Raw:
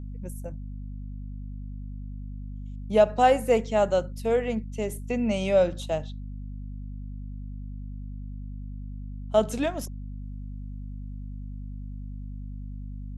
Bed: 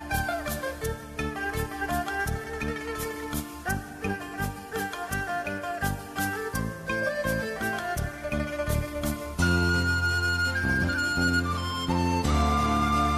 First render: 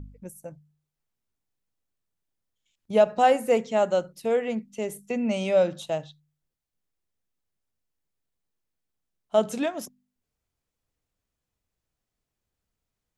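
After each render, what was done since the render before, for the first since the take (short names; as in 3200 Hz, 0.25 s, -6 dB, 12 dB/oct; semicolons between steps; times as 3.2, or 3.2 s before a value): de-hum 50 Hz, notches 5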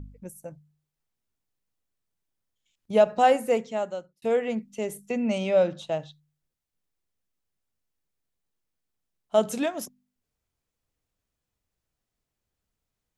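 3.35–4.22 fade out; 5.38–6.02 air absorption 71 m; 9.35–9.84 high shelf 8400 Hz +7 dB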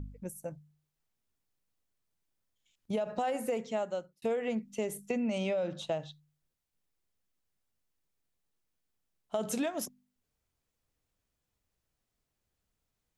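limiter -18.5 dBFS, peak gain reduction 11 dB; compressor, threshold -29 dBFS, peak gain reduction 7.5 dB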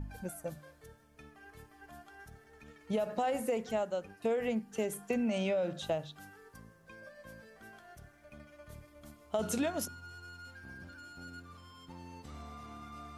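add bed -24 dB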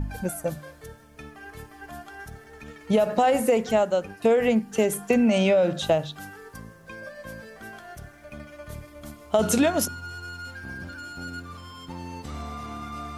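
gain +12 dB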